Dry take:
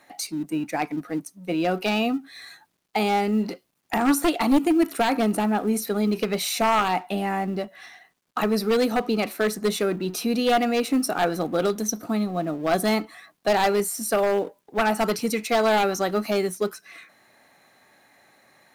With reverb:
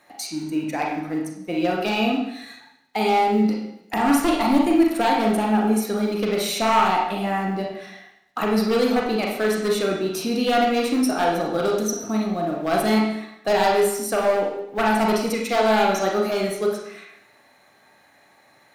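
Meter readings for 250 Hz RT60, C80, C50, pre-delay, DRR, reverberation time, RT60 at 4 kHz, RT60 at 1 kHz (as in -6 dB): 0.75 s, 6.0 dB, 2.0 dB, 32 ms, -1.0 dB, 0.75 s, 0.75 s, 0.75 s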